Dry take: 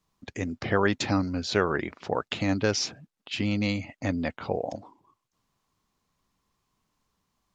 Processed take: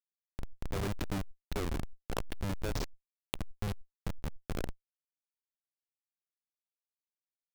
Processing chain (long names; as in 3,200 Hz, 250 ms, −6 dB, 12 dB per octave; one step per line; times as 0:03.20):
comparator with hysteresis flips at −21.5 dBFS
background raised ahead of every attack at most 21 dB per second
level −2.5 dB